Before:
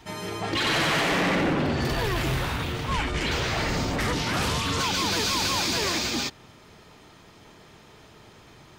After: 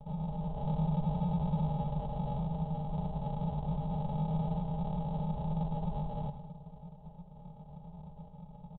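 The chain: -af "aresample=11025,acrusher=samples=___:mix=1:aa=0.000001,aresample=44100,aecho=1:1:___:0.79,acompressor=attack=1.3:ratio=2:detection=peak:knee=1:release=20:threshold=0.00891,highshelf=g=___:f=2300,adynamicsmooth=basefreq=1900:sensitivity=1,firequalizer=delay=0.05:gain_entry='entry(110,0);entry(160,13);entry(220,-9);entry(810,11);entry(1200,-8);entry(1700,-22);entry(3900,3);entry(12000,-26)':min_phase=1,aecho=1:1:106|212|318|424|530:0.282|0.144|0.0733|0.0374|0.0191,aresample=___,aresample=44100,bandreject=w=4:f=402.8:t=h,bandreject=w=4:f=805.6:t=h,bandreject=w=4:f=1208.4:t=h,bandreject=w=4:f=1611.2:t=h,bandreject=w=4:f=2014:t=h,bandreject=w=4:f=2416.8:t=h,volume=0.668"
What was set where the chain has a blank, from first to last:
31, 4.8, 6, 8000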